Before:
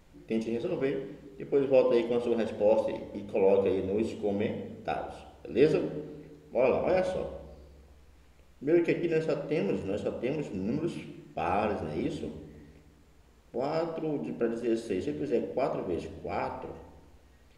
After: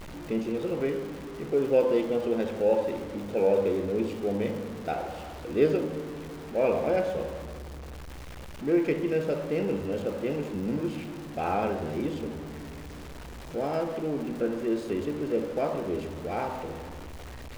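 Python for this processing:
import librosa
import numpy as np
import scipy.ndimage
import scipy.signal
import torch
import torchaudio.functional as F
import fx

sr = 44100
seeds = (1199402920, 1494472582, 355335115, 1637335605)

y = x + 0.5 * 10.0 ** (-36.0 / 20.0) * np.sign(x)
y = fx.high_shelf(y, sr, hz=4800.0, db=-10.0)
y = fx.dmg_crackle(y, sr, seeds[0], per_s=160.0, level_db=-38.0)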